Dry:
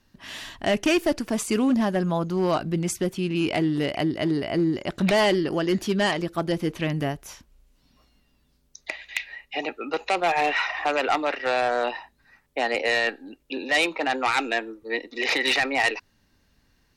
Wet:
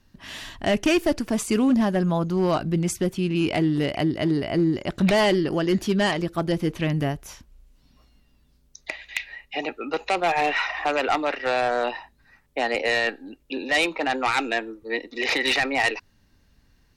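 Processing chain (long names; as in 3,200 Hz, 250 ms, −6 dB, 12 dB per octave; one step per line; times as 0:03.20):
low-shelf EQ 160 Hz +6.5 dB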